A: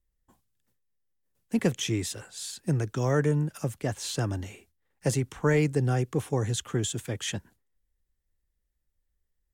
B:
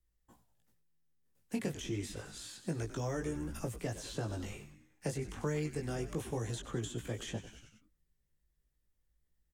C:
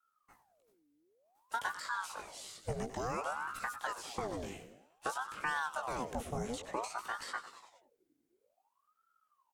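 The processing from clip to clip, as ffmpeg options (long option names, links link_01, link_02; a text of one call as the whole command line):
ffmpeg -i in.wav -filter_complex "[0:a]asplit=6[link_01][link_02][link_03][link_04][link_05][link_06];[link_02]adelay=95,afreqshift=-81,volume=-14dB[link_07];[link_03]adelay=190,afreqshift=-162,volume=-19.8dB[link_08];[link_04]adelay=285,afreqshift=-243,volume=-25.7dB[link_09];[link_05]adelay=380,afreqshift=-324,volume=-31.5dB[link_10];[link_06]adelay=475,afreqshift=-405,volume=-37.4dB[link_11];[link_01][link_07][link_08][link_09][link_10][link_11]amix=inputs=6:normalize=0,flanger=delay=17:depth=3.4:speed=0.29,acrossover=split=250|970|2700[link_12][link_13][link_14][link_15];[link_12]acompressor=threshold=-43dB:ratio=4[link_16];[link_13]acompressor=threshold=-42dB:ratio=4[link_17];[link_14]acompressor=threshold=-56dB:ratio=4[link_18];[link_15]acompressor=threshold=-52dB:ratio=4[link_19];[link_16][link_17][link_18][link_19]amix=inputs=4:normalize=0,volume=2.5dB" out.wav
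ffmpeg -i in.wav -af "aeval=exprs='val(0)*sin(2*PI*820*n/s+820*0.65/0.55*sin(2*PI*0.55*n/s))':channel_layout=same,volume=2dB" out.wav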